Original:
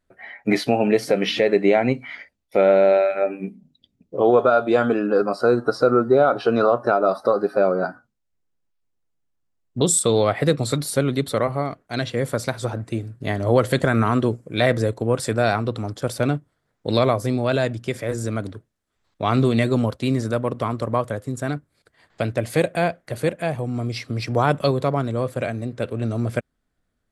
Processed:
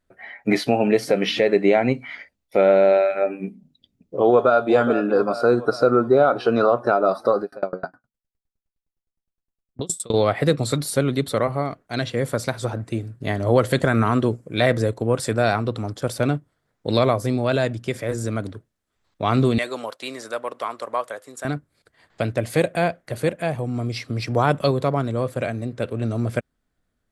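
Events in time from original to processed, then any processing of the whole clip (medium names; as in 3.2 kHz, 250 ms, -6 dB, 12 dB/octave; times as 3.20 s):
4.27–4.69 s: echo throw 420 ms, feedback 60%, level -10.5 dB
7.42–10.14 s: sawtooth tremolo in dB decaying 9.7 Hz, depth 32 dB
19.58–21.45 s: high-pass 640 Hz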